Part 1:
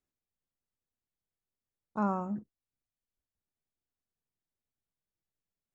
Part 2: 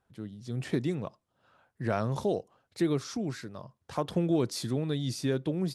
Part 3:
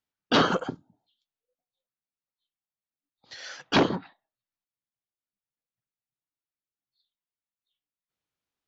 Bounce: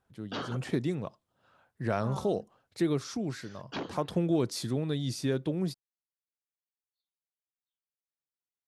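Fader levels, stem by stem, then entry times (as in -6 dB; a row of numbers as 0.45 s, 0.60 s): -12.0 dB, -0.5 dB, -16.0 dB; 0.05 s, 0.00 s, 0.00 s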